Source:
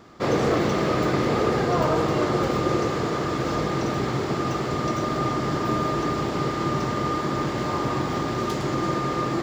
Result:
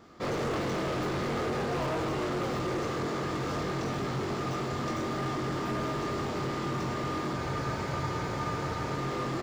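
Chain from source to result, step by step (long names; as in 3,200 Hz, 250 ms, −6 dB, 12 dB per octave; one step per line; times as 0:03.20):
double-tracking delay 22 ms −3.5 dB
hard clipping −22 dBFS, distortion −9 dB
frozen spectrum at 0:07.39, 1.59 s
level −6.5 dB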